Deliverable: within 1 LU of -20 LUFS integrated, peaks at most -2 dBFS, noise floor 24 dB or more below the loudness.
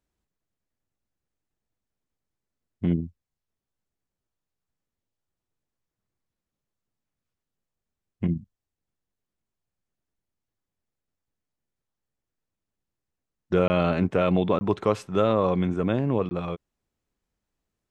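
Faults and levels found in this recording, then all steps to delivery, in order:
dropouts 3; longest dropout 20 ms; loudness -25.0 LUFS; peak -8.5 dBFS; loudness target -20.0 LUFS
-> interpolate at 13.68/14.59/16.29, 20 ms; gain +5 dB

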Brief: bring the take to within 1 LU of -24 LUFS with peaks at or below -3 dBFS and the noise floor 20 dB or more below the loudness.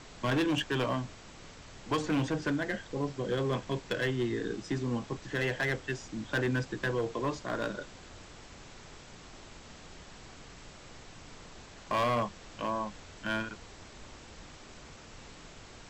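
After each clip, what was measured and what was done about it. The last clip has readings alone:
clipped 1.6%; flat tops at -24.5 dBFS; noise floor -51 dBFS; noise floor target -53 dBFS; loudness -33.0 LUFS; peak -24.5 dBFS; loudness target -24.0 LUFS
-> clip repair -24.5 dBFS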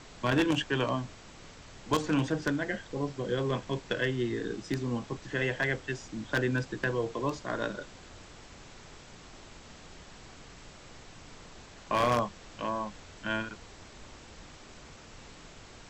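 clipped 0.0%; noise floor -51 dBFS; noise floor target -52 dBFS
-> noise print and reduce 6 dB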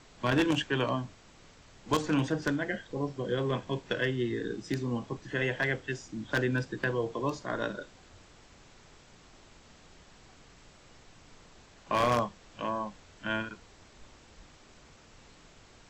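noise floor -57 dBFS; loudness -32.0 LUFS; peak -15.5 dBFS; loudness target -24.0 LUFS
-> gain +8 dB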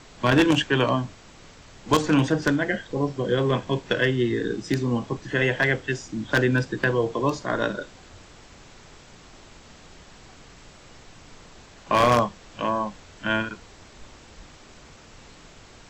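loudness -24.0 LUFS; peak -7.5 dBFS; noise floor -49 dBFS

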